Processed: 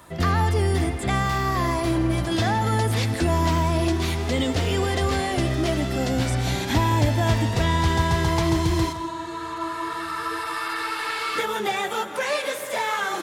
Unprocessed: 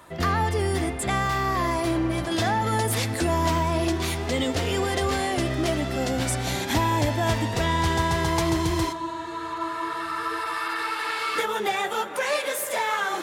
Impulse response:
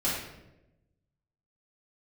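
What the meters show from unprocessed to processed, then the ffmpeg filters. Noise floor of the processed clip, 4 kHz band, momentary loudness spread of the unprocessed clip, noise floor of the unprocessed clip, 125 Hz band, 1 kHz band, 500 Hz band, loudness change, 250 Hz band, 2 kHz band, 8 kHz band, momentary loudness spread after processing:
-32 dBFS, +1.0 dB, 5 LU, -33 dBFS, +5.0 dB, 0.0 dB, +0.5 dB, +1.5 dB, +2.0 dB, +0.5 dB, -2.0 dB, 7 LU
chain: -filter_complex "[0:a]acrossover=split=4900[s0][s1];[s1]acompressor=threshold=0.00794:ratio=4:attack=1:release=60[s2];[s0][s2]amix=inputs=2:normalize=0,bass=f=250:g=5,treble=f=4000:g=4,aecho=1:1:163:0.178"

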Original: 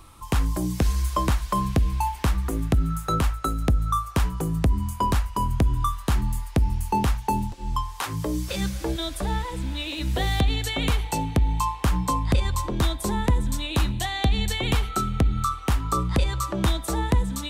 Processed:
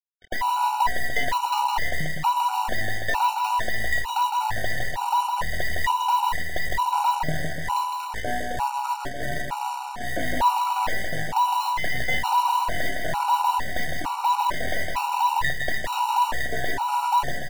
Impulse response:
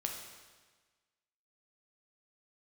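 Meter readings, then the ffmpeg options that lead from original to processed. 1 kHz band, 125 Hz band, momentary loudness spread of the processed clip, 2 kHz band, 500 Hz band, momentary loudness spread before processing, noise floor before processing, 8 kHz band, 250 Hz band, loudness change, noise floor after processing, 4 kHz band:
+7.5 dB, -13.5 dB, 7 LU, +8.5 dB, -2.0 dB, 4 LU, -38 dBFS, -2.0 dB, -11.5 dB, +0.5 dB, -31 dBFS, -0.5 dB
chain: -filter_complex "[0:a]afftfilt=real='real(if(between(b,1,1008),(2*floor((b-1)/48)+1)*48-b,b),0)':imag='imag(if(between(b,1,1008),(2*floor((b-1)/48)+1)*48-b,b),0)*if(between(b,1,1008),-1,1)':win_size=2048:overlap=0.75,highpass=f=320:p=1,afwtdn=0.0355,lowpass=f=2400:p=1,adynamicequalizer=threshold=0.00224:dfrequency=420:dqfactor=7.1:tfrequency=420:tqfactor=7.1:attack=5:release=100:ratio=0.375:range=2.5:mode=cutabove:tftype=bell,alimiter=limit=0.15:level=0:latency=1:release=76,acrusher=bits=5:mix=0:aa=0.5,aeval=exprs='0.158*(cos(1*acos(clip(val(0)/0.158,-1,1)))-cos(1*PI/2))+0.0355*(cos(4*acos(clip(val(0)/0.158,-1,1)))-cos(4*PI/2))+0.0126*(cos(7*acos(clip(val(0)/0.158,-1,1)))-cos(7*PI/2))+0.00158*(cos(8*acos(clip(val(0)/0.158,-1,1)))-cos(8*PI/2))':c=same,asplit=2[s0][s1];[s1]aecho=0:1:160|296|411.6|509.9|593.4:0.631|0.398|0.251|0.158|0.1[s2];[s0][s2]amix=inputs=2:normalize=0,afftfilt=real='re*gt(sin(2*PI*1.1*pts/sr)*(1-2*mod(floor(b*sr/1024/750),2)),0)':imag='im*gt(sin(2*PI*1.1*pts/sr)*(1-2*mod(floor(b*sr/1024/750),2)),0)':win_size=1024:overlap=0.75,volume=1.19"

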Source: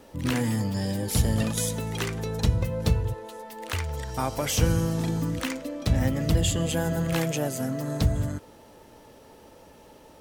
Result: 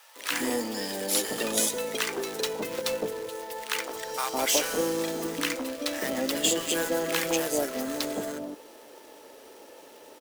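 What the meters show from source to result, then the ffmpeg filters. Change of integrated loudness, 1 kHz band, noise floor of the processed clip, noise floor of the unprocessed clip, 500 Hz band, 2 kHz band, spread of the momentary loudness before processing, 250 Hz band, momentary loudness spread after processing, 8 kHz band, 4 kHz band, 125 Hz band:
-1.5 dB, +1.0 dB, -50 dBFS, -52 dBFS, +2.5 dB, +3.5 dB, 8 LU, -4.5 dB, 9 LU, +4.0 dB, +4.0 dB, -22.5 dB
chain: -filter_complex "[0:a]highpass=f=310:w=0.5412,highpass=f=310:w=1.3066,acrusher=bits=2:mode=log:mix=0:aa=0.000001,acrossover=split=900[s0][s1];[s0]adelay=160[s2];[s2][s1]amix=inputs=2:normalize=0,volume=1.5"

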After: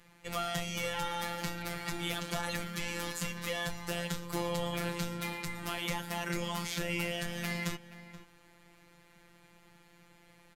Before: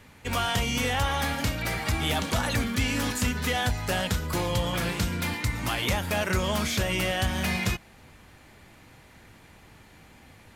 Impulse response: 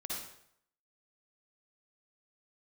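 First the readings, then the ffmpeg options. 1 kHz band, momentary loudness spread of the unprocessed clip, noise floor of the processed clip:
-8.0 dB, 3 LU, -62 dBFS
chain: -filter_complex "[0:a]afftfilt=real='hypot(re,im)*cos(PI*b)':imag='0':win_size=1024:overlap=0.75,asplit=2[s0][s1];[s1]adelay=478.1,volume=0.2,highshelf=f=4000:g=-10.8[s2];[s0][s2]amix=inputs=2:normalize=0,volume=0.596"

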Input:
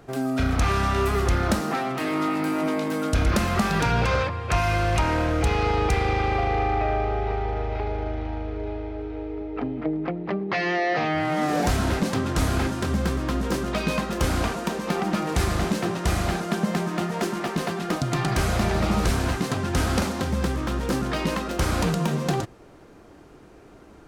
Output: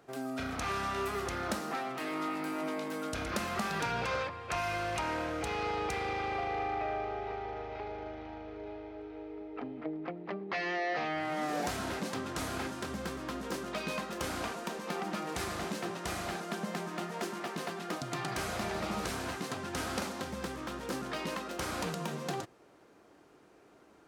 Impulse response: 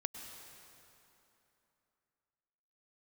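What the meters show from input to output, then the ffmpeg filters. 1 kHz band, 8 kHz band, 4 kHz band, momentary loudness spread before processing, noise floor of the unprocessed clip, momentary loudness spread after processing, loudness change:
-9.0 dB, -8.5 dB, -8.5 dB, 6 LU, -48 dBFS, 7 LU, -11.5 dB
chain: -af "highpass=f=340:p=1,volume=0.376"

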